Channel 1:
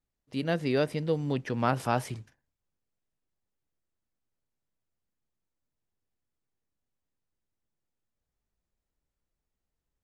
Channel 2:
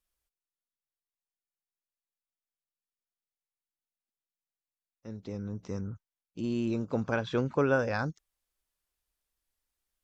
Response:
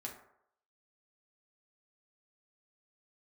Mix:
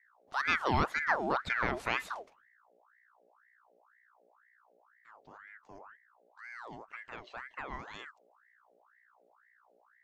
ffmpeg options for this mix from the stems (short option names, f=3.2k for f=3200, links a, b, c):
-filter_complex "[0:a]alimiter=limit=-17dB:level=0:latency=1:release=261,volume=1.5dB[a];[1:a]aeval=exprs='val(0)+0.00316*(sin(2*PI*60*n/s)+sin(2*PI*2*60*n/s)/2+sin(2*PI*3*60*n/s)/3+sin(2*PI*4*60*n/s)/4+sin(2*PI*5*60*n/s)/5)':c=same,adynamicequalizer=threshold=0.00708:dfrequency=1800:dqfactor=0.7:tfrequency=1800:tqfactor=0.7:attack=5:release=100:ratio=0.375:range=2:mode=boostabove:tftype=highshelf,volume=-13.5dB[b];[a][b]amix=inputs=2:normalize=0,highshelf=f=8.3k:g=-10.5,aeval=exprs='val(0)*sin(2*PI*1200*n/s+1200*0.6/2*sin(2*PI*2*n/s))':c=same"